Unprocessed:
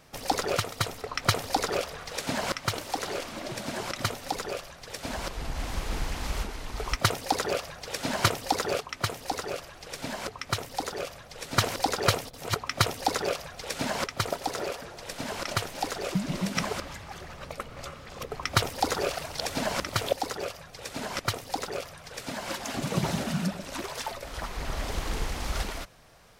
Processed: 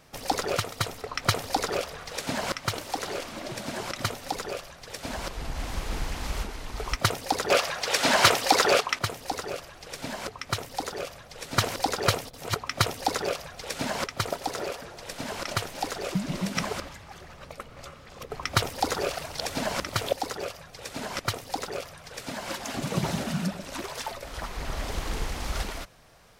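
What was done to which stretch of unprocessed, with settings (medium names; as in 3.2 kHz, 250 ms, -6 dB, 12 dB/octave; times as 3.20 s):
7.50–8.99 s: overdrive pedal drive 18 dB, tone 6.8 kHz, clips at -6.5 dBFS
16.89–18.30 s: gain -3.5 dB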